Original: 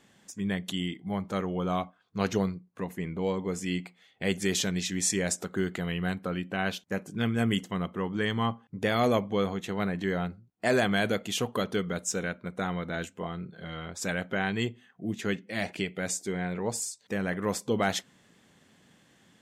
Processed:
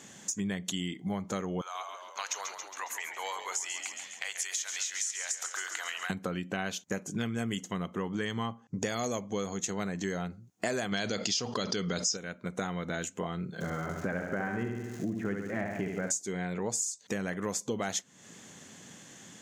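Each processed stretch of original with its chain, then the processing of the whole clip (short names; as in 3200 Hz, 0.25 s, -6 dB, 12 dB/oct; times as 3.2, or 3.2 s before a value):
1.61–6.1 HPF 870 Hz 24 dB/oct + compressor 5:1, threshold -39 dBFS + frequency-shifting echo 0.137 s, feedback 62%, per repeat -49 Hz, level -9.5 dB
8.6–10.22 band shelf 6000 Hz +8.5 dB 1 oct + mismatched tape noise reduction decoder only
10.92–12.17 synth low-pass 5000 Hz, resonance Q 13 + fast leveller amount 70%
13.6–16.1 LPF 1800 Hz 24 dB/oct + flutter echo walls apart 11.9 m, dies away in 0.85 s + crackle 490/s -49 dBFS
whole clip: HPF 87 Hz; bell 6600 Hz +13.5 dB 0.47 oct; compressor 5:1, threshold -40 dBFS; gain +8.5 dB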